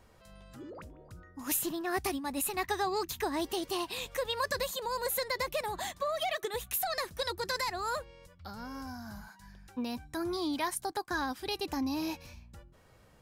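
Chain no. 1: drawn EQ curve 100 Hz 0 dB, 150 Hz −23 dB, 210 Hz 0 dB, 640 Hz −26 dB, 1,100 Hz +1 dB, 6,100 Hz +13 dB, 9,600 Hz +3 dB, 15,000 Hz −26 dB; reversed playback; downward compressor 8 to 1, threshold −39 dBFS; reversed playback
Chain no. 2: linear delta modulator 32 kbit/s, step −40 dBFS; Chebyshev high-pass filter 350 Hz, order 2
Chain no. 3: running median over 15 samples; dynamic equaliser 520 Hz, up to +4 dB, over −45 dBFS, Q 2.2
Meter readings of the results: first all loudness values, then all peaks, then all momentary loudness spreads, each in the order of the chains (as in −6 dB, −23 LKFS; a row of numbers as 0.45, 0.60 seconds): −41.5, −36.0, −35.0 LKFS; −26.0, −21.5, −19.5 dBFS; 12, 14, 16 LU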